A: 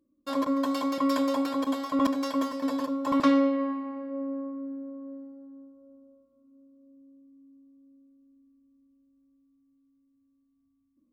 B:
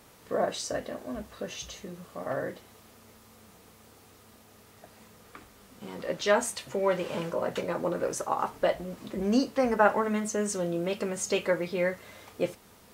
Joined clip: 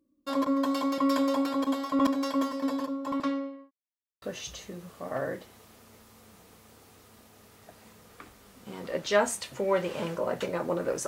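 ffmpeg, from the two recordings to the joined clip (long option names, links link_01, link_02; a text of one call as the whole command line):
ffmpeg -i cue0.wav -i cue1.wav -filter_complex "[0:a]apad=whole_dur=11.07,atrim=end=11.07,asplit=2[link_01][link_02];[link_01]atrim=end=3.71,asetpts=PTS-STARTPTS,afade=type=out:start_time=2.59:duration=1.12[link_03];[link_02]atrim=start=3.71:end=4.22,asetpts=PTS-STARTPTS,volume=0[link_04];[1:a]atrim=start=1.37:end=8.22,asetpts=PTS-STARTPTS,afade=type=in:duration=0.004:curve=hsin[link_05];[link_03][link_04][link_05]concat=n=3:v=0:a=1" out.wav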